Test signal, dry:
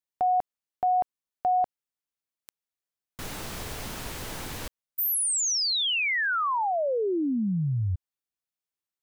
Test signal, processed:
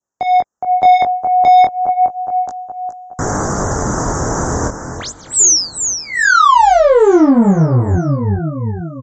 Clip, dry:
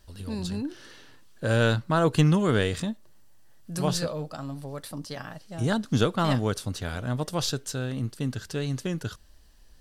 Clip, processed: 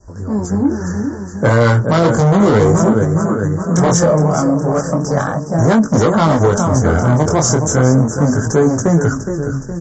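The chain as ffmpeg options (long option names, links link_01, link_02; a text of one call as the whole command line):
ffmpeg -i in.wav -filter_complex "[0:a]asuperstop=centerf=3200:order=8:qfactor=0.72,asplit=2[link_01][link_02];[link_02]aecho=0:1:416|832|1248|1664|2080|2496:0.266|0.138|0.0719|0.0374|0.0195|0.0101[link_03];[link_01][link_03]amix=inputs=2:normalize=0,asoftclip=type=tanh:threshold=-27dB,adynamicequalizer=threshold=0.00282:dfrequency=1700:dqfactor=1.9:tfrequency=1700:tqfactor=1.9:attack=5:release=100:ratio=0.417:range=3:mode=cutabove:tftype=bell,highpass=frequency=51:poles=1,acrossover=split=260[link_04][link_05];[link_04]acompressor=threshold=-35dB:ratio=4:attack=0.22:release=155:knee=2.83:detection=peak[link_06];[link_06][link_05]amix=inputs=2:normalize=0,equalizer=frequency=2600:width=4.7:gain=-14,flanger=delay=18:depth=7.8:speed=0.34,aresample=16000,aresample=44100,dynaudnorm=framelen=120:gausssize=11:maxgain=7dB,alimiter=level_in=20.5dB:limit=-1dB:release=50:level=0:latency=1,volume=-1dB" -ar 44100 -c:a libmp3lame -b:a 40k out.mp3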